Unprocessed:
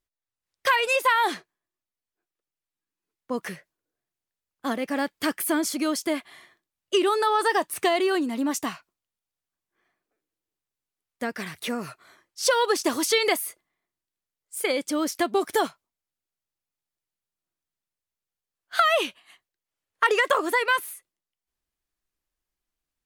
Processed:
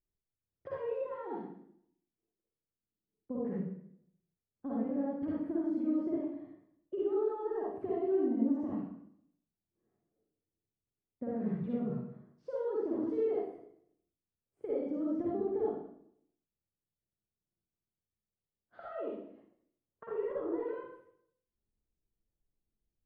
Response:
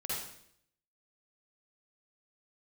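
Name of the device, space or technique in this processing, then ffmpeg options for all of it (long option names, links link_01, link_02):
television next door: -filter_complex "[0:a]acompressor=threshold=-28dB:ratio=6,lowpass=350[link_01];[1:a]atrim=start_sample=2205[link_02];[link_01][link_02]afir=irnorm=-1:irlink=0,volume=2dB"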